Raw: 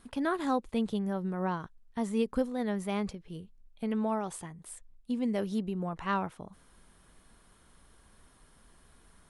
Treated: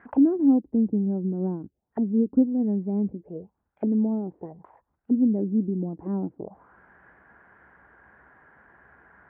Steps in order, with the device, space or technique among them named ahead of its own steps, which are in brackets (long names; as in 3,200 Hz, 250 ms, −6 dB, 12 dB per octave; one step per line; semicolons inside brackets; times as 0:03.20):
0:01.62–0:02.12: parametric band 980 Hz −14 dB → −5.5 dB 1.3 octaves
envelope filter bass rig (envelope-controlled low-pass 280–1,900 Hz down, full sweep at −33.5 dBFS; loudspeaker in its box 74–2,200 Hz, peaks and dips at 95 Hz −10 dB, 160 Hz −6 dB, 240 Hz −5 dB, 800 Hz +5 dB, 1,200 Hz −6 dB)
level +6 dB